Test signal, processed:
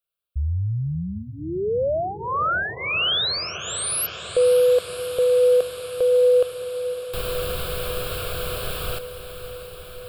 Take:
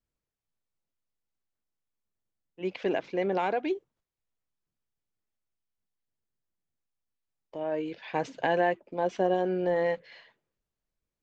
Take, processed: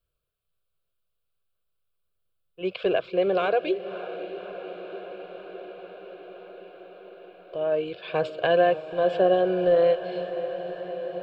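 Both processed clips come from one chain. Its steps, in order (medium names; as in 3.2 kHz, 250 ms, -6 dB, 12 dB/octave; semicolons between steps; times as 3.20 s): static phaser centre 1.3 kHz, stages 8; echo that smears into a reverb 583 ms, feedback 77%, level -12.5 dB; trim +8 dB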